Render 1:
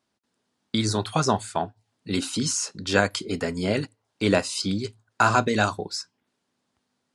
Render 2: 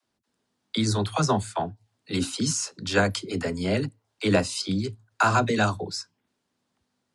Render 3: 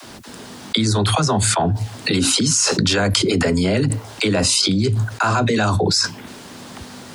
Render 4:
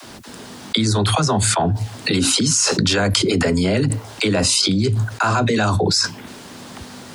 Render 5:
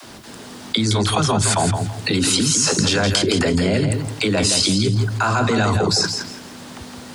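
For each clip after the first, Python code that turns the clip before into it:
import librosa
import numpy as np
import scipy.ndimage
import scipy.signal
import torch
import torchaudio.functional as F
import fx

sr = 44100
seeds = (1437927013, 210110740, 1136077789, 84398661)

y1 = fx.low_shelf(x, sr, hz=120.0, db=6.0)
y1 = fx.dispersion(y1, sr, late='lows', ms=46.0, hz=340.0)
y1 = y1 * 10.0 ** (-1.5 / 20.0)
y2 = fx.env_flatten(y1, sr, amount_pct=100)
y3 = y2
y4 = fx.echo_feedback(y3, sr, ms=166, feedback_pct=24, wet_db=-7)
y4 = y4 * 10.0 ** (-1.0 / 20.0)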